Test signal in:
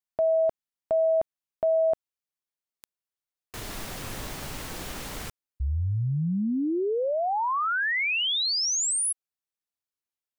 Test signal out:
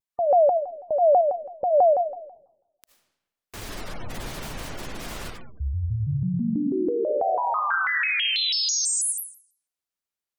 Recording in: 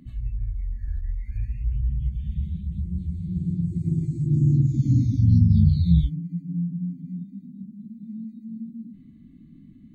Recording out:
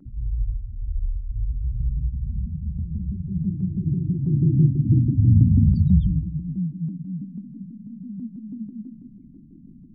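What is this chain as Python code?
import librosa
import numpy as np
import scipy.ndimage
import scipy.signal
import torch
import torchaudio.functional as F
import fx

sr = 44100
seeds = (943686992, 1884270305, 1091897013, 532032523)

y = fx.rev_freeverb(x, sr, rt60_s=1.0, hf_ratio=0.85, predelay_ms=35, drr_db=2.0)
y = fx.spec_gate(y, sr, threshold_db=-30, keep='strong')
y = fx.vibrato_shape(y, sr, shape='saw_down', rate_hz=6.1, depth_cents=250.0)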